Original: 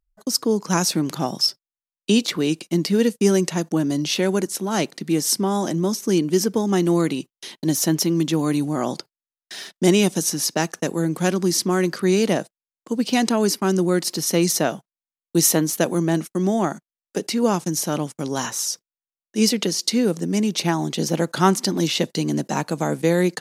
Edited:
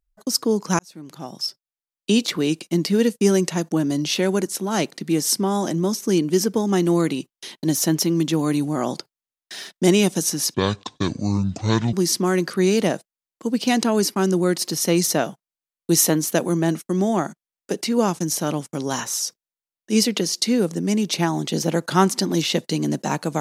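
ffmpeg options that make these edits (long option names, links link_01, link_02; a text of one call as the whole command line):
ffmpeg -i in.wav -filter_complex "[0:a]asplit=4[link_01][link_02][link_03][link_04];[link_01]atrim=end=0.79,asetpts=PTS-STARTPTS,afade=type=out:start_time=0.786:duration=0.004:curve=hsin[link_05];[link_02]atrim=start=0.79:end=10.544,asetpts=PTS-STARTPTS,afade=type=in:duration=1.46[link_06];[link_03]atrim=start=10.54:end=11.39,asetpts=PTS-STARTPTS,asetrate=26901,aresample=44100[link_07];[link_04]atrim=start=11.386[link_08];[link_05][link_06]concat=n=2:v=0:a=1[link_09];[link_09][link_07]acrossfade=duration=0.004:curve1=hsin:curve2=hsin[link_10];[link_10][link_08]acrossfade=duration=0.004:curve1=hsin:curve2=hsin" out.wav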